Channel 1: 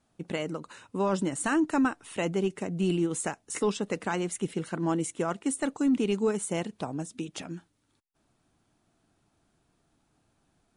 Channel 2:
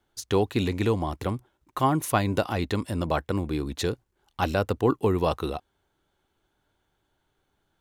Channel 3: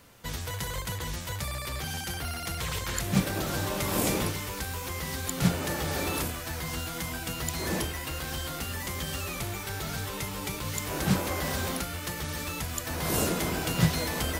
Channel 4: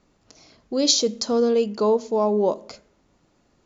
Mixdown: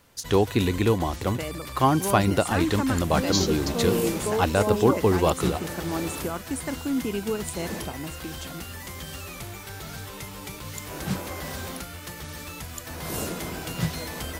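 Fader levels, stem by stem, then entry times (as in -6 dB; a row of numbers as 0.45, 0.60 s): -2.0, +2.5, -3.5, -7.5 dB; 1.05, 0.00, 0.00, 2.45 s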